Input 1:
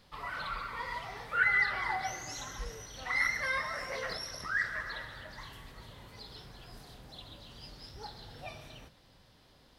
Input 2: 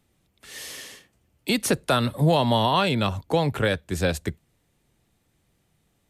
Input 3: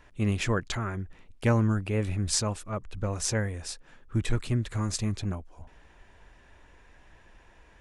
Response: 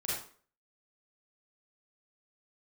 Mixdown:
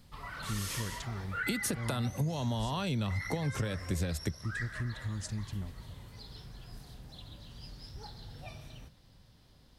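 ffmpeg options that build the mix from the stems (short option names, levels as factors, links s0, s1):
-filter_complex "[0:a]volume=0.562[s0];[1:a]volume=0.841[s1];[2:a]highpass=49,adelay=300,volume=0.211[s2];[s1][s2]amix=inputs=2:normalize=0,acompressor=threshold=0.0562:ratio=6,volume=1[s3];[s0][s3]amix=inputs=2:normalize=0,bass=f=250:g=10,treble=f=4000:g=5,acompressor=threshold=0.0224:ratio=3"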